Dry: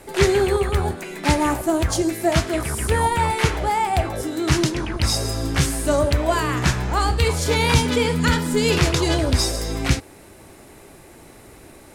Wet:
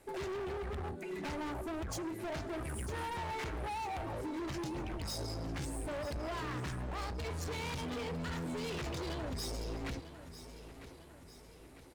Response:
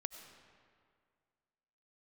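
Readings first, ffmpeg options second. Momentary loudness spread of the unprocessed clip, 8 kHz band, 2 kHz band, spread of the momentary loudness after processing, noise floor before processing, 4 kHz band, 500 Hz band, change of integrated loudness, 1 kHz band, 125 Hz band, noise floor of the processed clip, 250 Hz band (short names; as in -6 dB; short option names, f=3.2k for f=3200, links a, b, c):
6 LU, -21.5 dB, -19.5 dB, 12 LU, -45 dBFS, -20.5 dB, -19.0 dB, -19.0 dB, -18.5 dB, -19.5 dB, -55 dBFS, -18.0 dB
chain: -filter_complex "[0:a]afftdn=nr=15:nf=-27,alimiter=limit=-12.5dB:level=0:latency=1:release=94,acompressor=threshold=-35dB:ratio=2,volume=35.5dB,asoftclip=hard,volume=-35.5dB,asplit=2[a][b];[b]aecho=0:1:950|1900|2850|3800|4750:0.224|0.116|0.0605|0.0315|0.0164[c];[a][c]amix=inputs=2:normalize=0,volume=-2dB"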